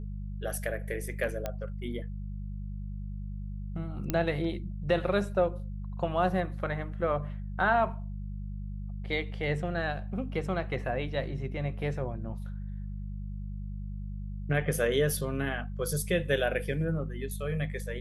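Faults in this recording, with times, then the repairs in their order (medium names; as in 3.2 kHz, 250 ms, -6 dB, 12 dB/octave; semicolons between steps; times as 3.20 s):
hum 50 Hz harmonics 4 -37 dBFS
1.46 s: pop -18 dBFS
4.10 s: pop -14 dBFS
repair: de-click; de-hum 50 Hz, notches 4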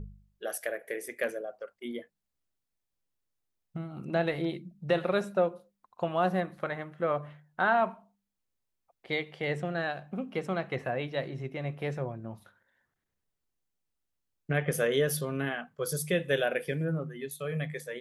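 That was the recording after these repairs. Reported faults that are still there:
nothing left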